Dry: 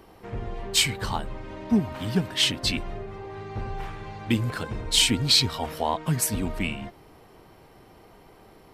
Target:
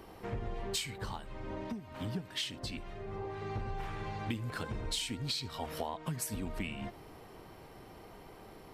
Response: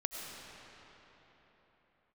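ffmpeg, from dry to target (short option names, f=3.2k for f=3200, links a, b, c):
-filter_complex "[0:a]acompressor=threshold=-33dB:ratio=16,asettb=1/sr,asplit=3[a][b][c];[a]atrim=end=0.984[d];[b]atrim=start=0.98:end=3.42,asetpts=PTS-STARTPTS,afade=t=in:d=0.004:c=qsin,afade=t=out:st=2.436:d=0.004:c=qsin,acrossover=split=1300[e][f];[e]aeval=exprs='val(0)*(1-0.5/2+0.5/2*cos(2*PI*1.8*n/s))':c=same[g];[f]aeval=exprs='val(0)*(1-0.5/2-0.5/2*cos(2*PI*1.8*n/s))':c=same[h];[g][h]amix=inputs=2:normalize=0[i];[c]atrim=start=3.416[j];[d][i]acrossfade=d=0.004:c1=hsin:c2=qsin[k];[k][j]acrossfade=d=0.004:c1=qsin:c2=hsin[l];[1:a]atrim=start_sample=2205,atrim=end_sample=3528[m];[l][m]afir=irnorm=-1:irlink=0,volume=1dB"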